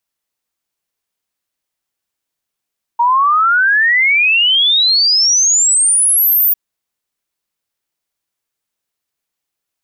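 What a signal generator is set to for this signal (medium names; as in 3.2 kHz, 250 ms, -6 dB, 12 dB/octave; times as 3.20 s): log sweep 930 Hz -> 15 kHz 3.55 s -8.5 dBFS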